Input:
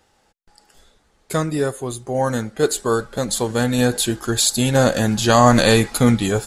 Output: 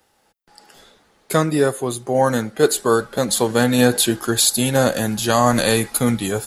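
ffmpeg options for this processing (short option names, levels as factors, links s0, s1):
-filter_complex "[0:a]lowshelf=f=83:g=-9,acrossover=split=100|6500[s0][s1][s2];[s1]dynaudnorm=f=210:g=5:m=3.55[s3];[s2]aexciter=amount=2.7:drive=6.1:freq=9800[s4];[s0][s3][s4]amix=inputs=3:normalize=0,volume=0.841"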